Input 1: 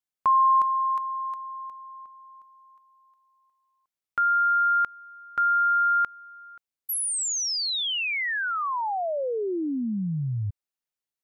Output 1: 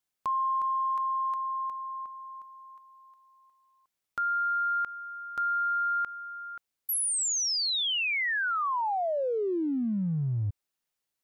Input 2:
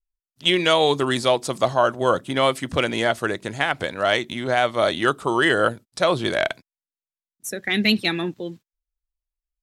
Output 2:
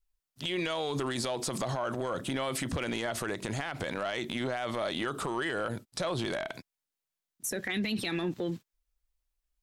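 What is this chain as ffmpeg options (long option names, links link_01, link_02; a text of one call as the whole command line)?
ffmpeg -i in.wav -af "acompressor=threshold=-32dB:ratio=10:attack=0.22:release=31:knee=6:detection=rms,volume=5.5dB" out.wav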